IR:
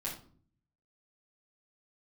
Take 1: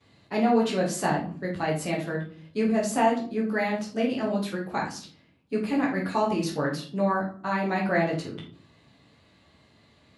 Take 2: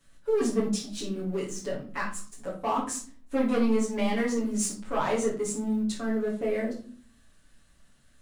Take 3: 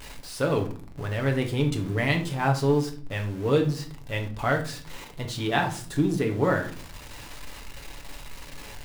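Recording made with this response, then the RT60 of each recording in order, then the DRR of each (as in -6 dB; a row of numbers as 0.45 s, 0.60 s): 2; 0.50 s, 0.50 s, no single decay rate; -16.0 dB, -6.5 dB, 3.0 dB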